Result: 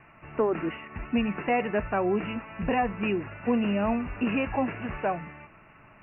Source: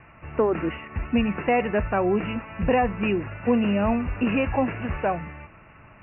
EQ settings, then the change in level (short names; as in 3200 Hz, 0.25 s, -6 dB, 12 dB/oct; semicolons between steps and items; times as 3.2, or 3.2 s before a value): bell 70 Hz -11.5 dB 0.96 oct; notch 510 Hz, Q 13; -3.0 dB